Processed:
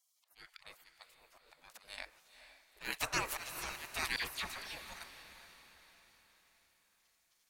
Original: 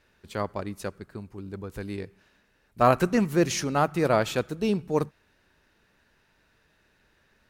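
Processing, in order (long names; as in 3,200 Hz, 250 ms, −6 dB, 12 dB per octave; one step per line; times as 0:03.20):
volume swells 210 ms
0:01.98–0:02.91: parametric band 150 Hz +11.5 dB 0.96 octaves
gate on every frequency bin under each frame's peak −25 dB weak
0:04.16–0:04.77: all-pass dispersion lows, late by 61 ms, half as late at 2,200 Hz
on a send: feedback delay with all-pass diffusion 469 ms, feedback 48%, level −11 dB
on the sum: level +4.5 dB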